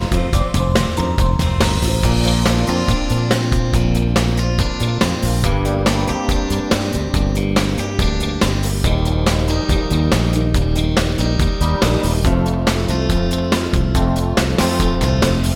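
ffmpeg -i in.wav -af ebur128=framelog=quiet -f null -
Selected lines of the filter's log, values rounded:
Integrated loudness:
  I:         -17.4 LUFS
  Threshold: -27.4 LUFS
Loudness range:
  LRA:         1.5 LU
  Threshold: -37.5 LUFS
  LRA low:   -18.3 LUFS
  LRA high:  -16.8 LUFS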